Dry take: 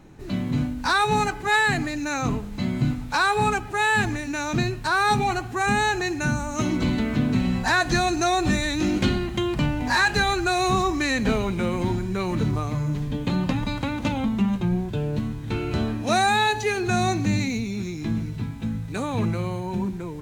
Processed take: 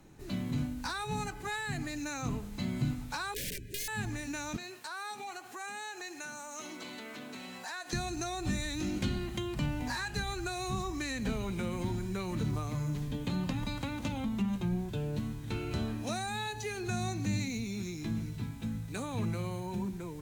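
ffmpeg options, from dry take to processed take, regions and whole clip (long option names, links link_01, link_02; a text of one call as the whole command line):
ffmpeg -i in.wav -filter_complex "[0:a]asettb=1/sr,asplit=3[link_01][link_02][link_03];[link_01]atrim=end=3.344[link_04];[link_02]atrim=start=3.34:end=3.88,asetpts=PTS-STARTPTS,afade=type=in:duration=0.004:curve=qsin,afade=type=out:start_time=0.536:duration=0.004:curve=qsin,highshelf=frequency=4100:gain=-3,aeval=exprs='(mod(8.41*val(0)+1,2)-1)/8.41':channel_layout=same,asuperstop=centerf=1000:order=12:qfactor=0.92[link_05];[link_03]atrim=start=3.876[link_06];[link_04][link_05]acrossfade=duration=0.004:curve1=hsin:curve2=qsin[link_07];[link_07][link_06]acrossfade=duration=0.004:curve1=qsin:curve2=hsin,asettb=1/sr,asplit=3[link_08][link_09][link_10];[link_08]atrim=end=4.564[link_11];[link_09]atrim=start=4.56:end=7.93,asetpts=PTS-STARTPTS,afade=type=in:duration=0.004:curve=qsin,afade=type=out:start_time=3.366:duration=0.004:curve=qsin,highpass=460,acompressor=threshold=-35dB:ratio=2.5:attack=3.2:release=140:knee=1:detection=peak[link_12];[link_10]atrim=start=7.926[link_13];[link_11][link_12]acrossfade=duration=0.004:curve1=hsin:curve2=qsin[link_14];[link_14][link_13]acrossfade=duration=0.004:curve1=qsin:curve2=hsin,aemphasis=mode=production:type=cd,acrossover=split=210[link_15][link_16];[link_16]acompressor=threshold=-28dB:ratio=4[link_17];[link_15][link_17]amix=inputs=2:normalize=0,volume=-8dB" out.wav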